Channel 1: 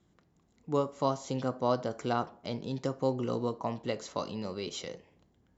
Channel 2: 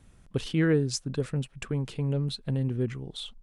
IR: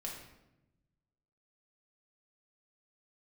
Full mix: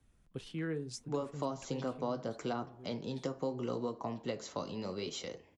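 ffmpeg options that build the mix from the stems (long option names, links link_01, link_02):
-filter_complex "[0:a]adelay=400,volume=3dB[link_01];[1:a]volume=-8.5dB,afade=type=out:start_time=1.83:duration=0.45:silence=0.237137[link_02];[link_01][link_02]amix=inputs=2:normalize=0,acrossover=split=130|380[link_03][link_04][link_05];[link_03]acompressor=threshold=-50dB:ratio=4[link_06];[link_04]acompressor=threshold=-34dB:ratio=4[link_07];[link_05]acompressor=threshold=-33dB:ratio=4[link_08];[link_06][link_07][link_08]amix=inputs=3:normalize=0,flanger=delay=2.6:depth=9.6:regen=-61:speed=0.74:shape=sinusoidal"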